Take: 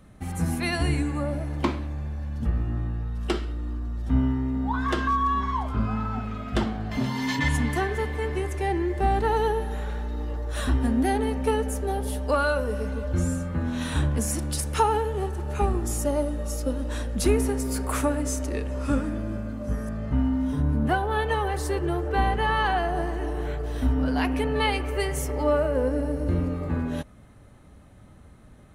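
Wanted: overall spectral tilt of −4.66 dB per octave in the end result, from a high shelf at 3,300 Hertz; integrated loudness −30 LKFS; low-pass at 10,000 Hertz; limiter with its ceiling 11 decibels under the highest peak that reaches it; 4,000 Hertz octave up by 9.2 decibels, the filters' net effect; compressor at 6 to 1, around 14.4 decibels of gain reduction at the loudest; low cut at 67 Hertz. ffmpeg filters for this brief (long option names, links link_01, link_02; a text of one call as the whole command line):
ffmpeg -i in.wav -af "highpass=67,lowpass=10000,highshelf=frequency=3300:gain=8,equalizer=frequency=4000:width_type=o:gain=6.5,acompressor=threshold=-33dB:ratio=6,volume=7.5dB,alimiter=limit=-21dB:level=0:latency=1" out.wav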